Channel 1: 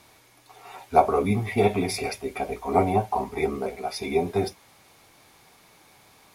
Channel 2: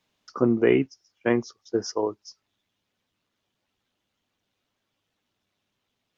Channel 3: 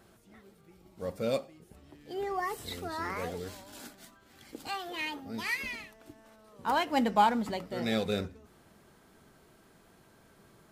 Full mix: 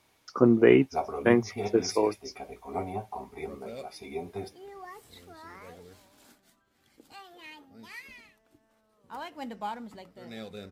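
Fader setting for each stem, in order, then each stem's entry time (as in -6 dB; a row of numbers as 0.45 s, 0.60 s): -12.5 dB, +1.0 dB, -11.5 dB; 0.00 s, 0.00 s, 2.45 s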